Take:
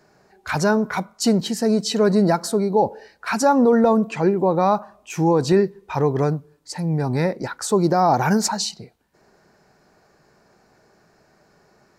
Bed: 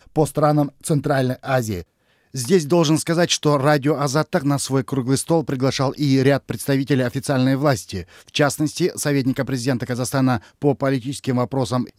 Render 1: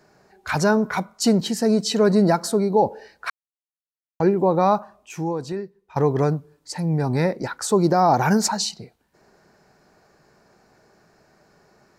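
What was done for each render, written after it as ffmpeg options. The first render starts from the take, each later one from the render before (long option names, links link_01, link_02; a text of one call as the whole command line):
ffmpeg -i in.wav -filter_complex "[0:a]asplit=4[link_01][link_02][link_03][link_04];[link_01]atrim=end=3.3,asetpts=PTS-STARTPTS,afade=type=out:start_time=3.296:duration=0.004:curve=hsin[link_05];[link_02]atrim=start=3.3:end=4.2,asetpts=PTS-STARTPTS,volume=0[link_06];[link_03]atrim=start=4.2:end=5.96,asetpts=PTS-STARTPTS,afade=type=in:duration=0.004:curve=hsin,afade=type=out:start_time=0.52:duration=1.24:curve=qua:silence=0.141254[link_07];[link_04]atrim=start=5.96,asetpts=PTS-STARTPTS,afade=type=in:duration=0.004:curve=hsin:silence=0.141254[link_08];[link_05][link_06][link_07][link_08]concat=n=4:v=0:a=1" out.wav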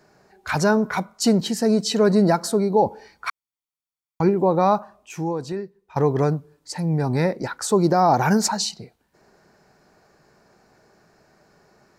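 ffmpeg -i in.wav -filter_complex "[0:a]asettb=1/sr,asplit=3[link_01][link_02][link_03];[link_01]atrim=end=2.864[link_04];[link_02]atrim=start=2.86:end=4.29,asetpts=PTS-STARTPTS,afade=type=in:duration=0.004:curve=qsin,afade=type=out:start_time=1.426:duration=0.004:curve=qsin,aecho=1:1:0.9:0.51,atrim=end_sample=63063[link_05];[link_03]atrim=start=4.286[link_06];[link_04][link_05]acrossfade=duration=0.004:curve1=hsin:curve2=qsin[link_07];[link_07][link_06]acrossfade=duration=0.004:curve1=qsin:curve2=hsin" out.wav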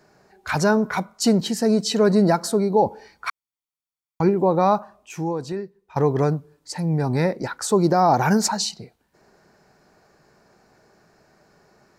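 ffmpeg -i in.wav -af anull out.wav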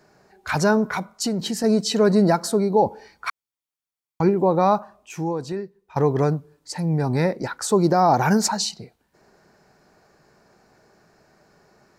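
ffmpeg -i in.wav -filter_complex "[0:a]asettb=1/sr,asplit=3[link_01][link_02][link_03];[link_01]atrim=end=0.954[link_04];[link_02]atrim=start=0.95:end=1.64,asetpts=PTS-STARTPTS,afade=type=in:duration=0.004:curve=qsin,afade=type=out:start_time=0.686:duration=0.004:curve=qsin,acompressor=threshold=-21dB:ratio=4:attack=3.2:release=140:knee=1:detection=peak[link_05];[link_03]atrim=start=1.636[link_06];[link_04][link_05]acrossfade=duration=0.004:curve1=hsin:curve2=qsin[link_07];[link_07][link_06]acrossfade=duration=0.004:curve1=qsin:curve2=hsin" out.wav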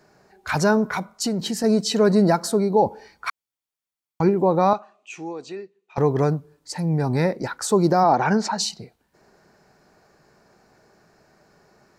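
ffmpeg -i in.wav -filter_complex "[0:a]asettb=1/sr,asplit=3[link_01][link_02][link_03];[link_01]atrim=end=4.734[link_04];[link_02]atrim=start=4.73:end=5.98,asetpts=PTS-STARTPTS,afade=type=in:duration=0.004:curve=qsin,afade=type=out:start_time=1.246:duration=0.004:curve=qsin,highpass=390,equalizer=frequency=540:width_type=q:width=4:gain=-8,equalizer=frequency=940:width_type=q:width=4:gain=-10,equalizer=frequency=1600:width_type=q:width=4:gain=-7,equalizer=frequency=2600:width_type=q:width=4:gain=6,equalizer=frequency=5200:width_type=q:width=4:gain=-6,lowpass=frequency=7300:width=0.5412,lowpass=frequency=7300:width=1.3066[link_05];[link_03]atrim=start=5.976[link_06];[link_04][link_05]acrossfade=duration=0.004:curve1=hsin:curve2=qsin[link_07];[link_07][link_06]acrossfade=duration=0.004:curve1=qsin:curve2=hsin,asplit=3[link_08][link_09][link_10];[link_08]afade=type=out:start_time=8.03:duration=0.02[link_11];[link_09]highpass=180,lowpass=3900,afade=type=in:start_time=8.03:duration=0.02,afade=type=out:start_time=8.57:duration=0.02[link_12];[link_10]afade=type=in:start_time=8.57:duration=0.02[link_13];[link_11][link_12][link_13]amix=inputs=3:normalize=0" out.wav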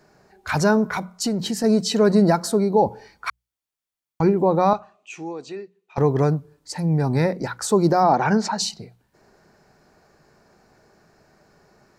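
ffmpeg -i in.wav -af "lowshelf=frequency=120:gain=5.5,bandreject=frequency=60:width_type=h:width=6,bandreject=frequency=120:width_type=h:width=6,bandreject=frequency=180:width_type=h:width=6" out.wav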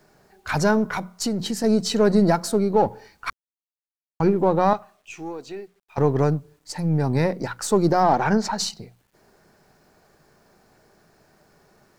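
ffmpeg -i in.wav -af "aeval=exprs='if(lt(val(0),0),0.708*val(0),val(0))':channel_layout=same,acrusher=bits=10:mix=0:aa=0.000001" out.wav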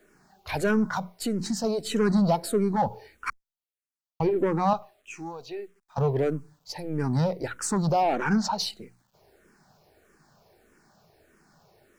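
ffmpeg -i in.wav -filter_complex "[0:a]asoftclip=type=tanh:threshold=-13dB,asplit=2[link_01][link_02];[link_02]afreqshift=-1.6[link_03];[link_01][link_03]amix=inputs=2:normalize=1" out.wav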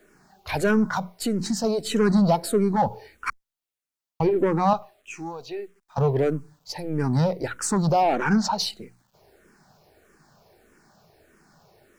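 ffmpeg -i in.wav -af "volume=3dB" out.wav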